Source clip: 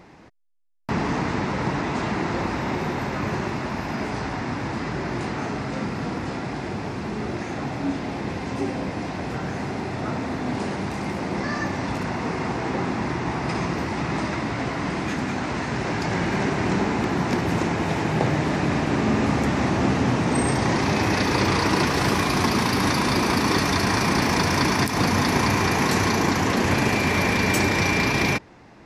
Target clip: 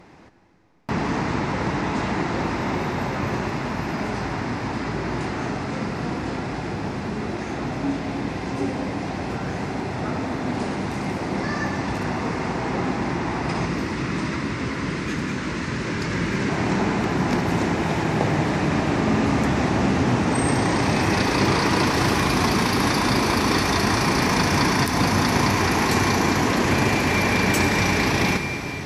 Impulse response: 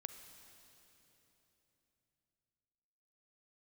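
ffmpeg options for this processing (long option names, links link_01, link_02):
-filter_complex "[0:a]asettb=1/sr,asplit=3[link_01][link_02][link_03];[link_01]atrim=end=13.654[link_04];[link_02]atrim=start=13.65:end=16.49,asetpts=PTS-STARTPTS,afade=type=in:duration=0.004:curve=qsin,afade=type=out:start_time=2.836:duration=0.004:curve=qsin,equalizer=frequency=750:width=2.9:gain=-13.5[link_05];[link_03]atrim=start=16.486[link_06];[link_04][link_05]acrossfade=duration=0.004:curve1=hsin:curve2=qsin[link_07];[link_07][link_06]acrossfade=duration=0.004:curve1=qsin:curve2=hsin[link_08];[1:a]atrim=start_sample=2205,asetrate=28224,aresample=44100[link_09];[link_08][link_09]afir=irnorm=-1:irlink=0,volume=2.5dB"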